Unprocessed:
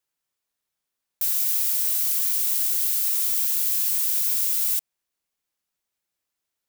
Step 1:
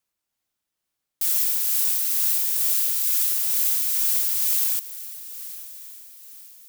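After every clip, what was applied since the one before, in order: frequency shift -360 Hz; diffused feedback echo 0.962 s, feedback 40%, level -15 dB; tremolo 2.2 Hz, depth 28%; gain +2 dB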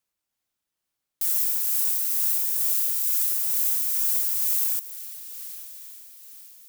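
dynamic EQ 3300 Hz, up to -6 dB, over -44 dBFS, Q 0.74; gain -1.5 dB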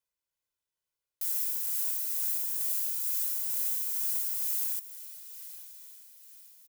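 comb 2 ms, depth 58%; gain -8.5 dB

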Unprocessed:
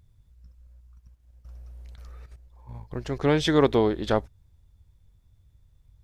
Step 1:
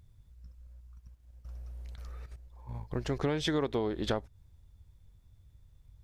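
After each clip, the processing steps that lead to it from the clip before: compressor 10:1, threshold -27 dBFS, peak gain reduction 13 dB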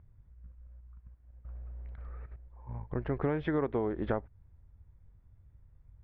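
LPF 2000 Hz 24 dB/oct

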